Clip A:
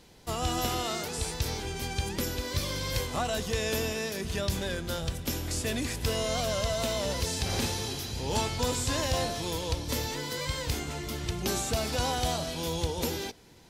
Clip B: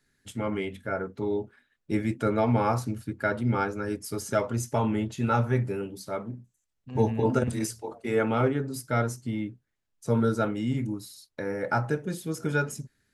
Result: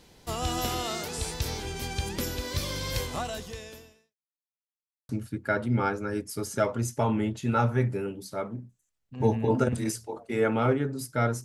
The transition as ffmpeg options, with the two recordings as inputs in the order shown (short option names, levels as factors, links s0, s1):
-filter_complex "[0:a]apad=whole_dur=11.44,atrim=end=11.44,asplit=2[s0][s1];[s0]atrim=end=4.16,asetpts=PTS-STARTPTS,afade=t=out:st=3.08:d=1.08:c=qua[s2];[s1]atrim=start=4.16:end=5.09,asetpts=PTS-STARTPTS,volume=0[s3];[1:a]atrim=start=2.84:end=9.19,asetpts=PTS-STARTPTS,afade=t=in:d=0.004:c=hsin[s4];[s2][s3][s4]concat=n=3:v=0:a=1"